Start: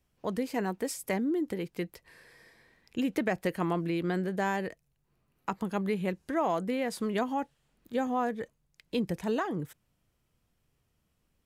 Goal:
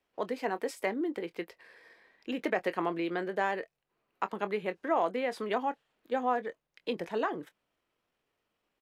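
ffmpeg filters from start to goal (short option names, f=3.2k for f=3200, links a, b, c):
-filter_complex "[0:a]acrossover=split=300 4300:gain=0.1 1 0.224[a][b][c];[a][b][c]amix=inputs=3:normalize=0,atempo=1.3,asplit=2[d][e];[e]adelay=24,volume=-13.5dB[f];[d][f]amix=inputs=2:normalize=0,volume=1.5dB"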